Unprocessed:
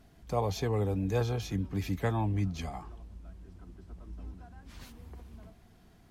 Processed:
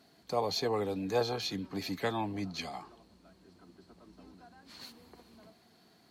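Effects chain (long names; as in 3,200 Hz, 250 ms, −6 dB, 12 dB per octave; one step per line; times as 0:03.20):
high-pass filter 230 Hz 12 dB per octave
parametric band 4,300 Hz +14.5 dB 0.22 octaves
0:00.65–0:02.82: auto-filter bell 1.7 Hz 600–3,800 Hz +7 dB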